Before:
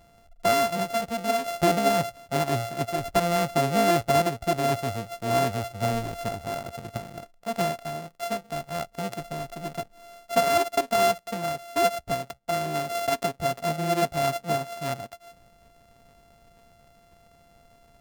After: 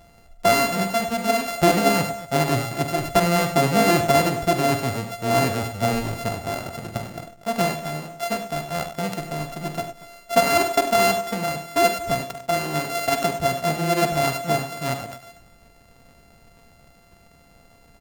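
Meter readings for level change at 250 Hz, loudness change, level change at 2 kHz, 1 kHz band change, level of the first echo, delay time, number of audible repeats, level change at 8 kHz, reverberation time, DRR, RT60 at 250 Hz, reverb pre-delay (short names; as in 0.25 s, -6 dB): +6.0 dB, +4.5 dB, +6.5 dB, +3.5 dB, -10.5 dB, 46 ms, 3, +6.0 dB, none, none, none, none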